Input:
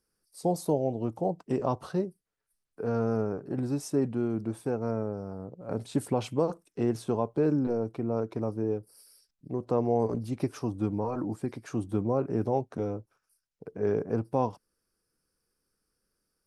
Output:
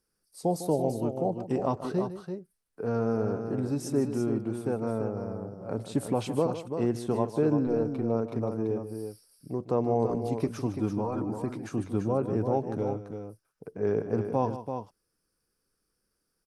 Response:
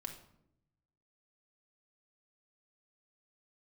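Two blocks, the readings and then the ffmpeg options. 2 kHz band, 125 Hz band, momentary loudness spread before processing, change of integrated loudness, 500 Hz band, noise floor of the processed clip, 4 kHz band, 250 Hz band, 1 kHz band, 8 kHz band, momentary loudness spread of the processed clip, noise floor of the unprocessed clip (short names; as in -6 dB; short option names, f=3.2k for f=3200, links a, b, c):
+1.0 dB, +1.0 dB, 9 LU, +0.5 dB, +1.0 dB, -80 dBFS, +1.0 dB, +1.0 dB, +1.0 dB, +1.0 dB, 10 LU, -82 dBFS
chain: -af "aecho=1:1:153|337:0.237|0.422"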